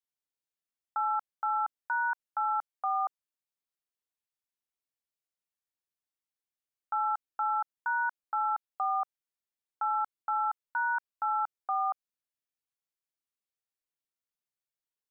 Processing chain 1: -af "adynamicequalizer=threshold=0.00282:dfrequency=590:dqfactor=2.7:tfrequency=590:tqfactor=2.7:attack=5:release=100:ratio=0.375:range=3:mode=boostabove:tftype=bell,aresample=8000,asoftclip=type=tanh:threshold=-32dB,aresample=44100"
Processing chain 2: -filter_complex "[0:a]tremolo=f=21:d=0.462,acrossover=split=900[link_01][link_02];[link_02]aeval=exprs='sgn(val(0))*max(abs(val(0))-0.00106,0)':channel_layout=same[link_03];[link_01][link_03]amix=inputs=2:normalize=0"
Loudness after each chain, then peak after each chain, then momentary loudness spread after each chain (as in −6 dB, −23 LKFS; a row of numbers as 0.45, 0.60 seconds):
−37.5, −34.5 LKFS; −30.5, −23.0 dBFS; 3, 3 LU